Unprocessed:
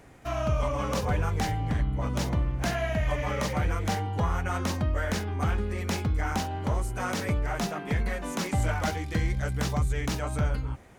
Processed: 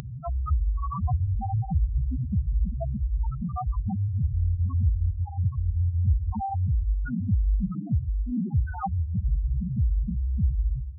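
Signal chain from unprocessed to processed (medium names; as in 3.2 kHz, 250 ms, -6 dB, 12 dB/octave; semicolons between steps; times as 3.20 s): random holes in the spectrogram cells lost 27%; treble shelf 2.8 kHz -10 dB; peak limiter -22.5 dBFS, peak gain reduction 5 dB; in parallel at -11.5 dB: one-sided clip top -45.5 dBFS, bottom -26 dBFS; on the sum: high-pass 49 Hz 24 dB/octave; static phaser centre 2 kHz, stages 6; reverberation RT60 0.70 s, pre-delay 62 ms, DRR 7.5 dB; loudest bins only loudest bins 2; dynamic bell 490 Hz, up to +7 dB, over -56 dBFS, Q 0.83; upward compressor, threshold -33 dBFS; trim +8.5 dB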